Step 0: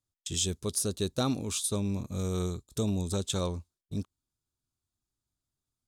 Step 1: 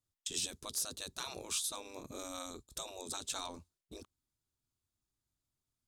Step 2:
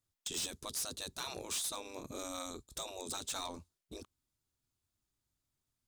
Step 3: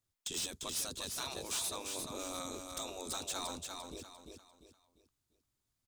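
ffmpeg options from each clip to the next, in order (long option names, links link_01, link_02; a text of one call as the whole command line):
ffmpeg -i in.wav -af "afftfilt=real='re*lt(hypot(re,im),0.0631)':imag='im*lt(hypot(re,im),0.0631)':win_size=1024:overlap=0.75,volume=-1.5dB" out.wav
ffmpeg -i in.wav -af "asoftclip=type=hard:threshold=-35.5dB,volume=2dB" out.wav
ffmpeg -i in.wav -af "aecho=1:1:347|694|1041|1388:0.562|0.197|0.0689|0.0241" out.wav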